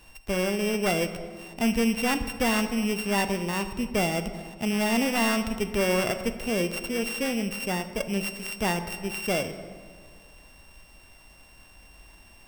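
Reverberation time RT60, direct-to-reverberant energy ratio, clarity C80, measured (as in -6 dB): 1.9 s, 9.0 dB, 11.5 dB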